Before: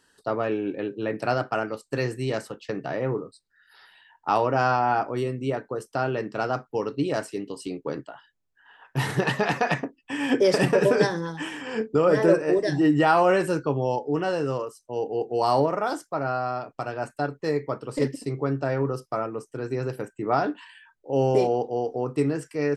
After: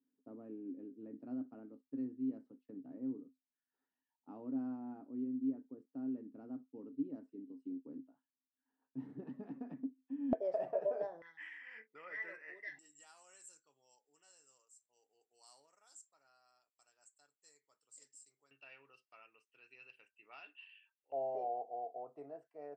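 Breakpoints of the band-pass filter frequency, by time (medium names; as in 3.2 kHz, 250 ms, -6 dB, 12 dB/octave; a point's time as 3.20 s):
band-pass filter, Q 20
260 Hz
from 10.33 s 650 Hz
from 11.22 s 2 kHz
from 12.79 s 7.5 kHz
from 18.51 s 2.7 kHz
from 21.12 s 680 Hz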